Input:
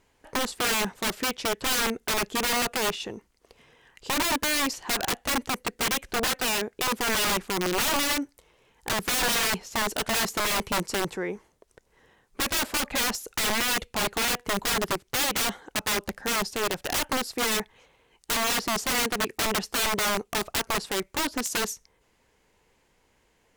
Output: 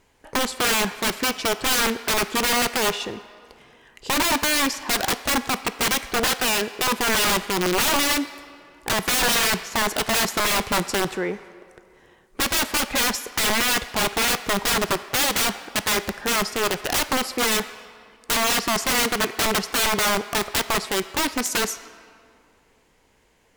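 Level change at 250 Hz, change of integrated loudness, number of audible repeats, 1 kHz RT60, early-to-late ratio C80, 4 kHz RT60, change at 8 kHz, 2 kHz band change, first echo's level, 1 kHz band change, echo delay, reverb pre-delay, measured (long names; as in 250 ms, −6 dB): +4.5 dB, +4.5 dB, no echo audible, 2.2 s, 14.5 dB, 1.4 s, +4.5 dB, +5.0 dB, no echo audible, +5.0 dB, no echo audible, 3 ms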